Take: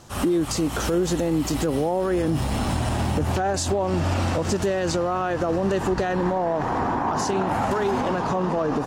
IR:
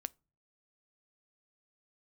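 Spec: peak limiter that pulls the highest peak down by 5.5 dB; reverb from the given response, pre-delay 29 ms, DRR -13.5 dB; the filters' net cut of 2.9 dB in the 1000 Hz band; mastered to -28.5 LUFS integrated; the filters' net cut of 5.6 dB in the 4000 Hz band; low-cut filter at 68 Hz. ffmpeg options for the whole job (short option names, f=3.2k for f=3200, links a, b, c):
-filter_complex "[0:a]highpass=68,equalizer=f=1k:t=o:g=-3.5,equalizer=f=4k:t=o:g=-7.5,alimiter=limit=-18dB:level=0:latency=1,asplit=2[a][b];[1:a]atrim=start_sample=2205,adelay=29[c];[b][c]afir=irnorm=-1:irlink=0,volume=16dB[d];[a][d]amix=inputs=2:normalize=0,volume=-15.5dB"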